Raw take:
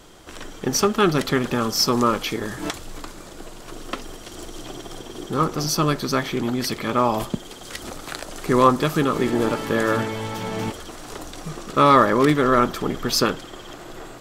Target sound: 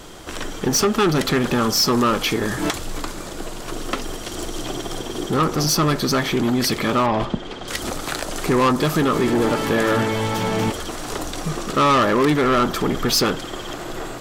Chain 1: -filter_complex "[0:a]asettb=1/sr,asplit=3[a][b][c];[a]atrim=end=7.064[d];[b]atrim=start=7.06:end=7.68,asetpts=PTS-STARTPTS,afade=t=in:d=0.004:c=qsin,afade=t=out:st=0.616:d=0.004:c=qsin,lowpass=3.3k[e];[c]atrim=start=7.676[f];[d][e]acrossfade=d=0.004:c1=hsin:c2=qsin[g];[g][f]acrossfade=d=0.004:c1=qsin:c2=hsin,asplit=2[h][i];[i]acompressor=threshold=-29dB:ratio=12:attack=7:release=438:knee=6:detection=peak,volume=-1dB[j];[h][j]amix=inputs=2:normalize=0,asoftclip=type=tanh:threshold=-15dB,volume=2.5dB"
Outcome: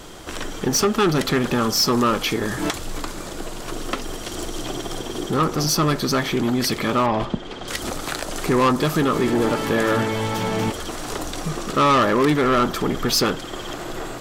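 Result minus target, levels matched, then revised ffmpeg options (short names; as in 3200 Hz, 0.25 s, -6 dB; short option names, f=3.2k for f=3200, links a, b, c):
compressor: peak gain reduction +8 dB
-filter_complex "[0:a]asettb=1/sr,asplit=3[a][b][c];[a]atrim=end=7.064[d];[b]atrim=start=7.06:end=7.68,asetpts=PTS-STARTPTS,afade=t=in:d=0.004:c=qsin,afade=t=out:st=0.616:d=0.004:c=qsin,lowpass=3.3k[e];[c]atrim=start=7.676[f];[d][e]acrossfade=d=0.004:c1=hsin:c2=qsin[g];[g][f]acrossfade=d=0.004:c1=qsin:c2=hsin,asplit=2[h][i];[i]acompressor=threshold=-20.5dB:ratio=12:attack=7:release=438:knee=6:detection=peak,volume=-1dB[j];[h][j]amix=inputs=2:normalize=0,asoftclip=type=tanh:threshold=-15dB,volume=2.5dB"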